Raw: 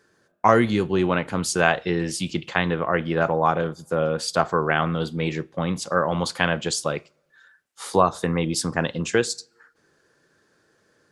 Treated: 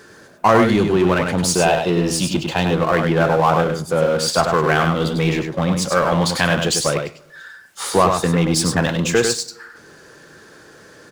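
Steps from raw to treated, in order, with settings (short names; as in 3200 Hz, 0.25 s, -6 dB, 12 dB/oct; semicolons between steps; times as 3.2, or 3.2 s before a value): spectral gain 1.31–2.77, 1000–2400 Hz -7 dB; power-law curve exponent 0.7; echo 99 ms -5.5 dB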